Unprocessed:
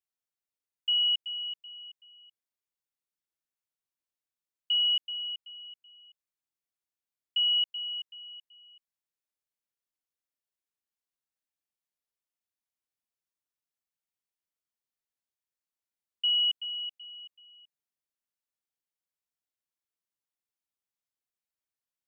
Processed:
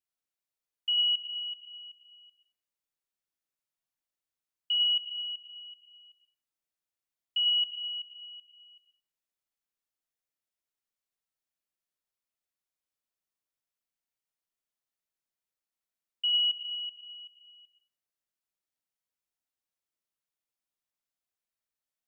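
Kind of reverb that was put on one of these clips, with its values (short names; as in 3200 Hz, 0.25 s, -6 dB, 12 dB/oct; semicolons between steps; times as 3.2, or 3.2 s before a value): digital reverb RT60 0.54 s, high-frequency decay 0.55×, pre-delay 55 ms, DRR 3.5 dB; gain -1.5 dB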